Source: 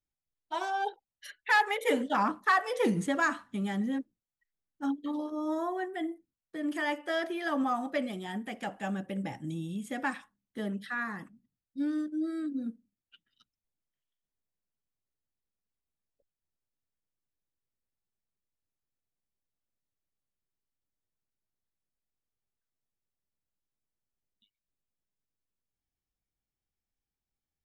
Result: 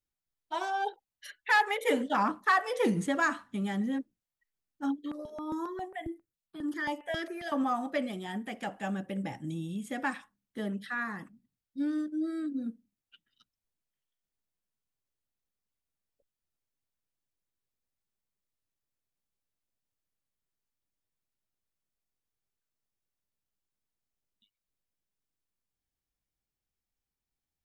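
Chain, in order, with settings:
0:04.98–0:07.52: step-sequenced phaser 7.4 Hz 210–2,700 Hz

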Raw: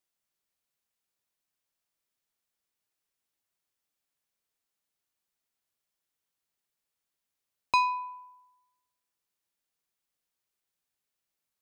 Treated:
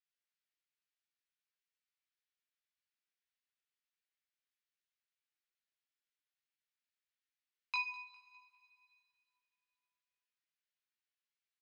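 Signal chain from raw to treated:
high-pass filter 1,500 Hz 24 dB per octave
on a send: repeating echo 203 ms, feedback 47%, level −19 dB
on the sum: coupled-rooms reverb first 0.47 s, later 3 s, from −16 dB, DRR 8 dB
chorus effect 0.55 Hz, delay 17.5 ms, depth 2.8 ms
high-frequency loss of the air 160 metres

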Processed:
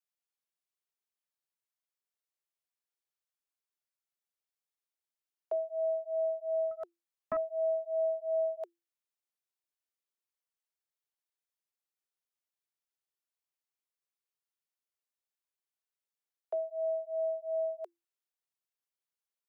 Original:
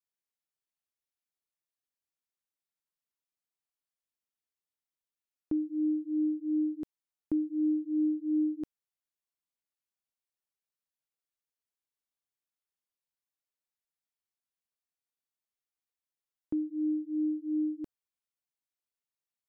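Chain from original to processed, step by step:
frequency shifter +340 Hz
0:06.71–0:07.37: highs frequency-modulated by the lows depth 0.32 ms
level −2.5 dB

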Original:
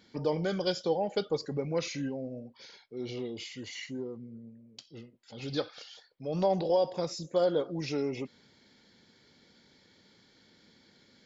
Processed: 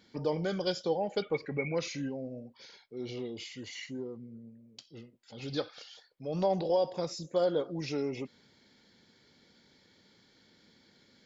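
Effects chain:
0:01.22–0:01.75: low-pass with resonance 2,300 Hz, resonance Q 14
level −1.5 dB

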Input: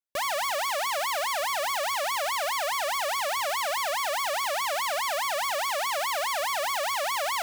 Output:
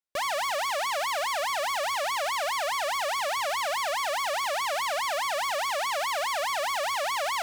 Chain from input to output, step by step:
high-shelf EQ 12,000 Hz −10 dB

